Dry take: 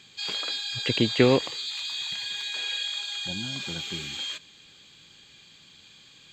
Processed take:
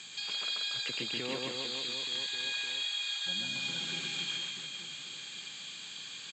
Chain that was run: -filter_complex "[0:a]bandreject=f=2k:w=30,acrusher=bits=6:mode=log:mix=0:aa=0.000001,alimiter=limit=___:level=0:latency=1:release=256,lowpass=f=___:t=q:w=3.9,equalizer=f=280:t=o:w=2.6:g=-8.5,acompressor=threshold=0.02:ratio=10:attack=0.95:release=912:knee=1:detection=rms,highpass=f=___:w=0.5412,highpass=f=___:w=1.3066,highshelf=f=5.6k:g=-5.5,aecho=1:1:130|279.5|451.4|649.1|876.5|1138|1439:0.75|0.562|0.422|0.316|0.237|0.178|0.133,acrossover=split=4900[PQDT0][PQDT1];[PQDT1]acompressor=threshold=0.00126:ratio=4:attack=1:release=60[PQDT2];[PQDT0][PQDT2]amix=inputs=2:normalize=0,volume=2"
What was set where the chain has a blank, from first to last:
0.224, 7.6k, 150, 150